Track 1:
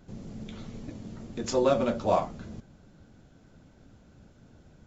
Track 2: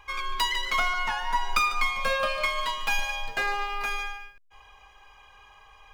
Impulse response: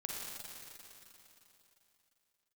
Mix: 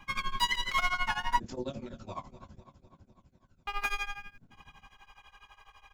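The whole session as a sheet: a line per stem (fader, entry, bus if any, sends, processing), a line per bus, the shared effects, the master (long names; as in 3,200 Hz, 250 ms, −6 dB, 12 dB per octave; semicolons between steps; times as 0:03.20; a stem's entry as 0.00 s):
−10.5 dB, 0.00 s, no send, echo send −14.5 dB, notch filter 1,200 Hz, Q 11; phase shifter 0.67 Hz, delay 1 ms, feedback 64%
+1.5 dB, 0.00 s, muted 0:01.40–0:03.67, no send, no echo send, no processing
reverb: not used
echo: repeating echo 252 ms, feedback 60%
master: parametric band 500 Hz −5.5 dB 0.95 octaves; shaped tremolo triangle 12 Hz, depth 95%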